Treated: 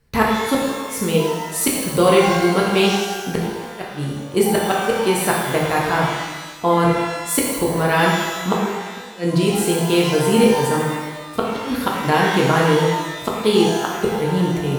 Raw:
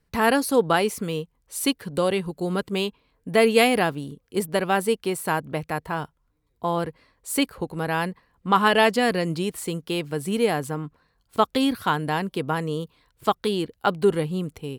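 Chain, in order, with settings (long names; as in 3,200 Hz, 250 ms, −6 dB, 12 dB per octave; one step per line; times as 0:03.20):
gate with flip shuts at −11 dBFS, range −37 dB
reverb with rising layers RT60 1.3 s, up +12 semitones, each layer −8 dB, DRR −3.5 dB
level +5.5 dB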